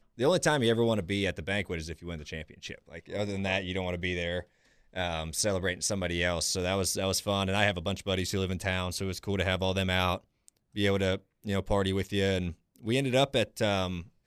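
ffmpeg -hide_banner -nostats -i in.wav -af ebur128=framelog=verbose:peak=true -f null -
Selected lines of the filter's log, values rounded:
Integrated loudness:
  I:         -29.8 LUFS
  Threshold: -40.2 LUFS
Loudness range:
  LRA:         4.7 LU
  Threshold: -50.6 LUFS
  LRA low:   -33.8 LUFS
  LRA high:  -29.1 LUFS
True peak:
  Peak:      -11.2 dBFS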